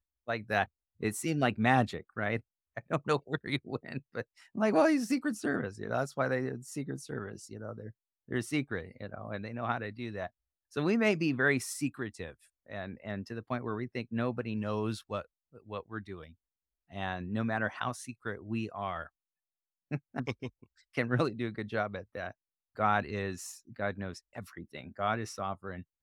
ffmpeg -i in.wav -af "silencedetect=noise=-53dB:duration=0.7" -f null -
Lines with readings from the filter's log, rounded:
silence_start: 19.08
silence_end: 19.91 | silence_duration: 0.83